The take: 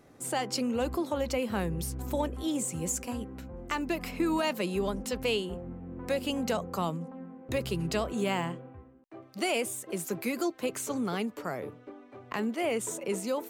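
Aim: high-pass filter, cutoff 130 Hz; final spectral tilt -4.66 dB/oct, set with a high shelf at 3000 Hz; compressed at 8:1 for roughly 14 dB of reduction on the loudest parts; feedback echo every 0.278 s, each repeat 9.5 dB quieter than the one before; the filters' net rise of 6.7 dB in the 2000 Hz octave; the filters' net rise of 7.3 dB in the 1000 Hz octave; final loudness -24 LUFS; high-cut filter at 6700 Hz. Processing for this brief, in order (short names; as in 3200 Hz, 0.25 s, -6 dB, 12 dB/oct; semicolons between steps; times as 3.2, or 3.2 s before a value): HPF 130 Hz; LPF 6700 Hz; bell 1000 Hz +8 dB; bell 2000 Hz +8.5 dB; high shelf 3000 Hz -5.5 dB; compressor 8:1, threshold -35 dBFS; feedback echo 0.278 s, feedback 33%, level -9.5 dB; gain +15.5 dB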